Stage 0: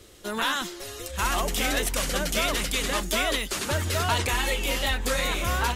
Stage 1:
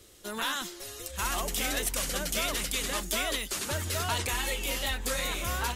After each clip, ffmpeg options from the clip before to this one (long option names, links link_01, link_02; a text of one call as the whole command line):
ffmpeg -i in.wav -af "highshelf=frequency=5100:gain=7,volume=-6.5dB" out.wav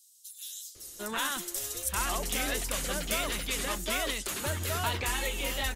ffmpeg -i in.wav -filter_complex "[0:a]acrossover=split=4700[link_01][link_02];[link_01]adelay=750[link_03];[link_03][link_02]amix=inputs=2:normalize=0" out.wav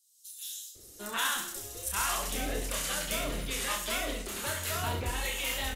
ffmpeg -i in.wav -filter_complex "[0:a]acrossover=split=710[link_01][link_02];[link_01]aeval=exprs='val(0)*(1-0.7/2+0.7/2*cos(2*PI*1.2*n/s))':channel_layout=same[link_03];[link_02]aeval=exprs='val(0)*(1-0.7/2-0.7/2*cos(2*PI*1.2*n/s))':channel_layout=same[link_04];[link_03][link_04]amix=inputs=2:normalize=0,acrusher=bits=9:mode=log:mix=0:aa=0.000001,aecho=1:1:30|67.5|114.4|173|246.2:0.631|0.398|0.251|0.158|0.1" out.wav